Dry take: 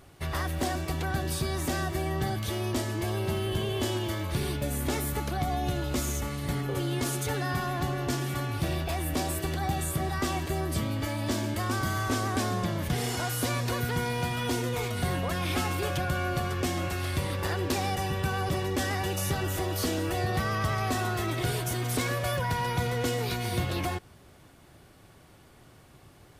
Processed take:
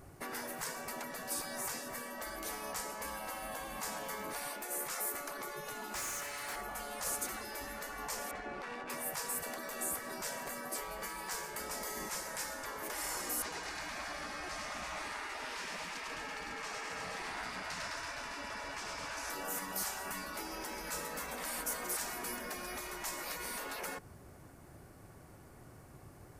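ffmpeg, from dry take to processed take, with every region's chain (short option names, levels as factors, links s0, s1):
-filter_complex "[0:a]asettb=1/sr,asplit=3[s0][s1][s2];[s0]atrim=end=5.954[s3];[s1]atrim=start=5.95:end=6.56,asetpts=PTS-STARTPTS,afade=t=in:d=0.004:c=qsin,afade=t=out:st=0.606:d=0.004:c=qsin,highpass=1300,asplit=2[s4][s5];[s5]highpass=f=720:p=1,volume=10,asoftclip=type=tanh:threshold=0.0708[s6];[s4][s6]amix=inputs=2:normalize=0,lowpass=f=2700:p=1,volume=0.501[s7];[s2]atrim=start=6.556[s8];[s3][s7]acrossfade=d=0.004:c1=hsin:c2=qsin[s9];[s9][s8]acrossfade=d=0.004:c1=qsin:c2=hsin,asettb=1/sr,asplit=3[s10][s11][s12];[s10]atrim=end=8.314[s13];[s11]atrim=start=8.31:end=8.9,asetpts=PTS-STARTPTS,afade=t=in:d=0.004:c=qsin,afade=t=out:st=0.586:d=0.004:c=qsin,lowpass=8900,equalizer=f=3700:t=o:w=2.6:g=3.5,adynamicsmooth=sensitivity=2.5:basefreq=1800[s14];[s12]atrim=start=8.896[s15];[s13][s14]acrossfade=d=0.004:c1=hsin:c2=qsin[s16];[s16][s15]acrossfade=d=0.004:c1=qsin:c2=hsin,asettb=1/sr,asplit=3[s17][s18][s19];[s17]atrim=end=13.424[s20];[s18]atrim=start=13.42:end=19.3,asetpts=PTS-STARTPTS,afade=t=in:d=0.004:c=qsin,afade=t=out:st=5.876:d=0.004:c=qsin,lowpass=4600,lowshelf=f=160:g=-7,aecho=1:1:100|210|331|464.1|610.5:0.794|0.631|0.501|0.398|0.316,atrim=end_sample=259308[s21];[s19]atrim=start=19.296[s22];[s20][s21]acrossfade=d=0.004:c1=hsin:c2=qsin[s23];[s23][s22]acrossfade=d=0.004:c1=qsin:c2=hsin,afftfilt=real='re*lt(hypot(re,im),0.0562)':imag='im*lt(hypot(re,im),0.0562)':win_size=1024:overlap=0.75,equalizer=f=3400:w=1.5:g=-13"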